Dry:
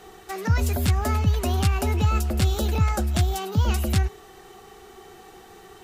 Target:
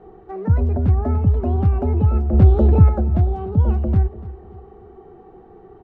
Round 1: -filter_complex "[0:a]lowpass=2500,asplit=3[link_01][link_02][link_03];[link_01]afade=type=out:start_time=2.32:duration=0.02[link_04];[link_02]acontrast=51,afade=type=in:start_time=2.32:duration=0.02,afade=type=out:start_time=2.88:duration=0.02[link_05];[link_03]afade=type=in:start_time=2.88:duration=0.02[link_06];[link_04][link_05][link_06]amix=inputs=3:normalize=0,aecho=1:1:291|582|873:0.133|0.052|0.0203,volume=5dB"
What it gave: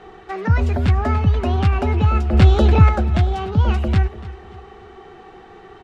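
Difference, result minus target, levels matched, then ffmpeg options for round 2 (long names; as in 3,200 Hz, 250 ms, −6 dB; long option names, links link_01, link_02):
2,000 Hz band +16.5 dB
-filter_complex "[0:a]lowpass=630,asplit=3[link_01][link_02][link_03];[link_01]afade=type=out:start_time=2.32:duration=0.02[link_04];[link_02]acontrast=51,afade=type=in:start_time=2.32:duration=0.02,afade=type=out:start_time=2.88:duration=0.02[link_05];[link_03]afade=type=in:start_time=2.88:duration=0.02[link_06];[link_04][link_05][link_06]amix=inputs=3:normalize=0,aecho=1:1:291|582|873:0.133|0.052|0.0203,volume=5dB"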